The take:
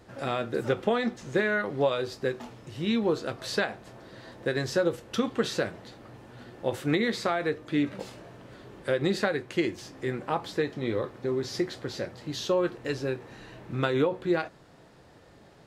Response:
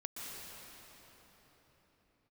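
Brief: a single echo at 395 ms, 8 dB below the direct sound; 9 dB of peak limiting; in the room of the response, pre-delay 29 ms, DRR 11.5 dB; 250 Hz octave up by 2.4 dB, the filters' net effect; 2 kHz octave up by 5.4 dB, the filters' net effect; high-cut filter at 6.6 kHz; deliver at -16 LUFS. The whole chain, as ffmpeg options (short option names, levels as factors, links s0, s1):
-filter_complex "[0:a]lowpass=6600,equalizer=f=250:t=o:g=3,equalizer=f=2000:t=o:g=7,alimiter=limit=0.15:level=0:latency=1,aecho=1:1:395:0.398,asplit=2[s0][s1];[1:a]atrim=start_sample=2205,adelay=29[s2];[s1][s2]afir=irnorm=-1:irlink=0,volume=0.266[s3];[s0][s3]amix=inputs=2:normalize=0,volume=4.47"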